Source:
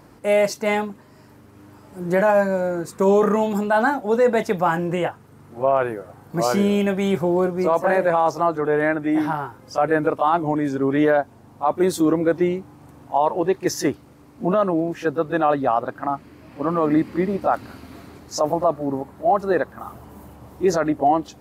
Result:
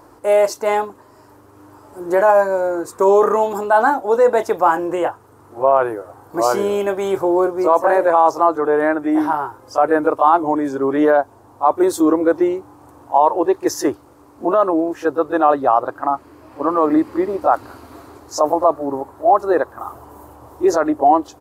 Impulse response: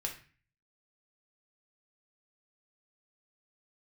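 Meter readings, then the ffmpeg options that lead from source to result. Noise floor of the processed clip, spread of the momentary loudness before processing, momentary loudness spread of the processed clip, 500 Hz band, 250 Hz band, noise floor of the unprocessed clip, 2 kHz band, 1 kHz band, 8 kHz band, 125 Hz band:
−47 dBFS, 10 LU, 9 LU, +4.0 dB, +1.5 dB, −49 dBFS, +1.0 dB, +6.0 dB, +2.0 dB, −10.0 dB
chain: -af "firequalizer=gain_entry='entry(110,0);entry(170,-14);entry(310,5);entry(630,5);entry(990,9);entry(2100,-3);entry(7100,4)':delay=0.05:min_phase=1,volume=-1dB"

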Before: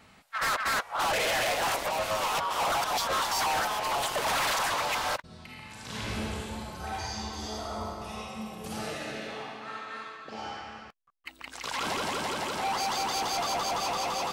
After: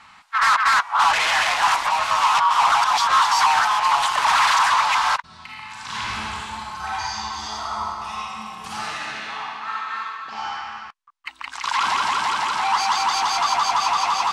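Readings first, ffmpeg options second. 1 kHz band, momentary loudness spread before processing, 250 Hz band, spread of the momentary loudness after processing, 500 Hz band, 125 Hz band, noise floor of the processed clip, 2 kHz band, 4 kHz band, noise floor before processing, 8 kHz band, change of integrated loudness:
+12.0 dB, 13 LU, −4.0 dB, 15 LU, −3.5 dB, −3.0 dB, −48 dBFS, +10.0 dB, +8.0 dB, −57 dBFS, +5.5 dB, +10.5 dB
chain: -af "lowpass=7300,lowshelf=frequency=720:width_type=q:width=3:gain=-10.5,volume=8dB"

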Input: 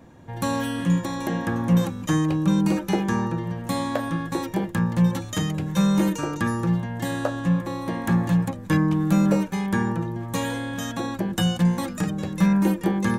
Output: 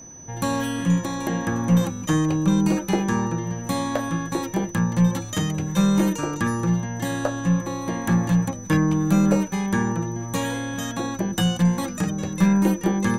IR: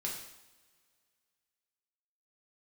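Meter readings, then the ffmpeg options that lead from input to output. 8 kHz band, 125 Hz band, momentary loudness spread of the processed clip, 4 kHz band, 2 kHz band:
+6.0 dB, +1.0 dB, 7 LU, +1.0 dB, +1.0 dB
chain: -af "aeval=exprs='0.398*(cos(1*acos(clip(val(0)/0.398,-1,1)))-cos(1*PI/2))+0.0501*(cos(2*acos(clip(val(0)/0.398,-1,1)))-cos(2*PI/2))':channel_layout=same,aeval=exprs='val(0)+0.00794*sin(2*PI*6000*n/s)':channel_layout=same,volume=1dB"

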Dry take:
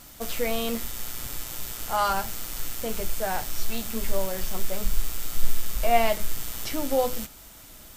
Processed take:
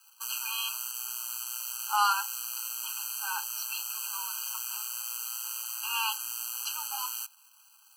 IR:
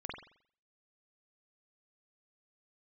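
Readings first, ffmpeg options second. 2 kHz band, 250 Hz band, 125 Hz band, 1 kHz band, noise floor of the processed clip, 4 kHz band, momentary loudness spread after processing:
−2.0 dB, below −40 dB, below −40 dB, −4.0 dB, −60 dBFS, +0.5 dB, 6 LU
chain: -af "highpass=frequency=1400:poles=1,aeval=exprs='sgn(val(0))*max(abs(val(0))-0.00501,0)':channel_layout=same,afftfilt=real='re*eq(mod(floor(b*sr/1024/810),2),1)':imag='im*eq(mod(floor(b*sr/1024/810),2),1)':win_size=1024:overlap=0.75,volume=5.5dB"

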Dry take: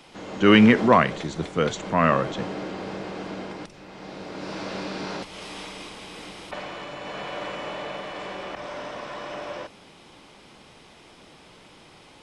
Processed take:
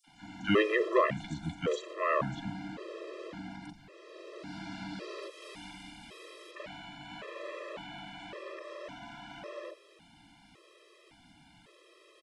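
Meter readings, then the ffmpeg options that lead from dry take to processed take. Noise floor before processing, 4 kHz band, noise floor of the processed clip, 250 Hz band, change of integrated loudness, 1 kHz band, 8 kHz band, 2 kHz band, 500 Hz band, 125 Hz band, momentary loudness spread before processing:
−51 dBFS, −11.5 dB, −61 dBFS, −14.5 dB, −11.0 dB, −11.0 dB, −11.5 dB, −9.5 dB, −8.0 dB, −12.0 dB, 21 LU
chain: -filter_complex "[0:a]acrossover=split=920|5600[link_01][link_02][link_03];[link_02]adelay=40[link_04];[link_01]adelay=70[link_05];[link_05][link_04][link_03]amix=inputs=3:normalize=0,afftfilt=real='re*gt(sin(2*PI*0.9*pts/sr)*(1-2*mod(floor(b*sr/1024/340),2)),0)':imag='im*gt(sin(2*PI*0.9*pts/sr)*(1-2*mod(floor(b*sr/1024/340),2)),0)':win_size=1024:overlap=0.75,volume=-5.5dB"

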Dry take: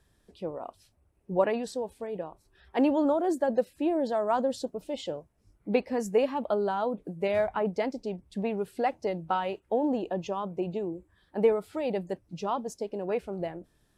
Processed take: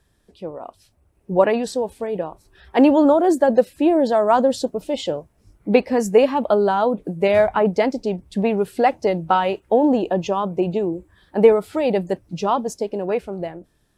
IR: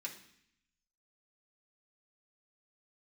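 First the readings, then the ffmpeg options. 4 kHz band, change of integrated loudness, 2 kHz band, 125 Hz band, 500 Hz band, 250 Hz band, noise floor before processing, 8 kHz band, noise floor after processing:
+10.5 dB, +11.0 dB, +10.5 dB, +10.5 dB, +10.5 dB, +10.5 dB, −69 dBFS, +10.5 dB, −63 dBFS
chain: -af "dynaudnorm=framelen=250:gausssize=9:maxgain=7.5dB,volume=3.5dB"

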